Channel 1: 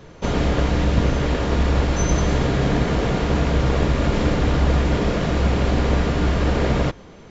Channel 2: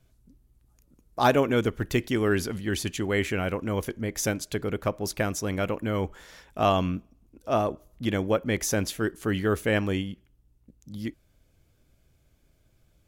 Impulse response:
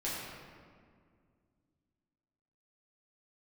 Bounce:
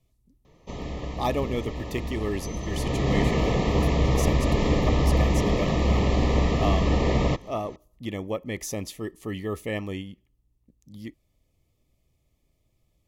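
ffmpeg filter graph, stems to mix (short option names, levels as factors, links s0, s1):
-filter_complex "[0:a]adelay=450,volume=0.708,afade=t=in:st=2.64:d=0.54:silence=0.281838[s0];[1:a]volume=0.531[s1];[s0][s1]amix=inputs=2:normalize=0,asuperstop=centerf=1500:order=20:qfactor=4"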